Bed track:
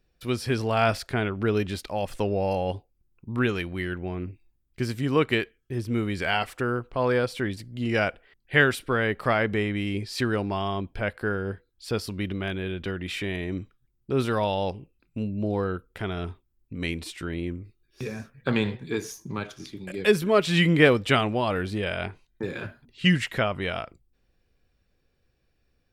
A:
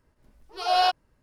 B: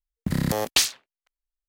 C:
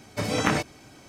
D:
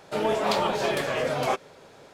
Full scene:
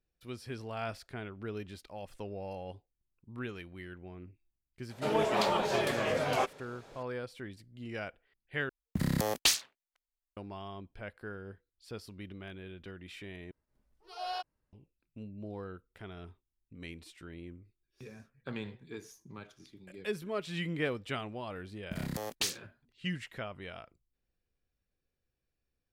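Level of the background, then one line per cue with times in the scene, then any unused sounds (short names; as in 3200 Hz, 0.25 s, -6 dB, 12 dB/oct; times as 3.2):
bed track -15.5 dB
4.9 add D -4.5 dB
8.69 replace with B -6 dB
13.51 replace with A -16.5 dB
21.65 add B -13 dB
not used: C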